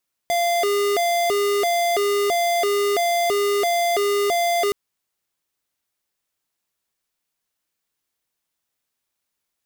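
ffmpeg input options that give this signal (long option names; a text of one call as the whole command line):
ffmpeg -f lavfi -i "aevalsrc='0.1*(2*lt(mod((548.5*t+142.5/1.5*(0.5-abs(mod(1.5*t,1)-0.5))),1),0.5)-1)':duration=4.42:sample_rate=44100" out.wav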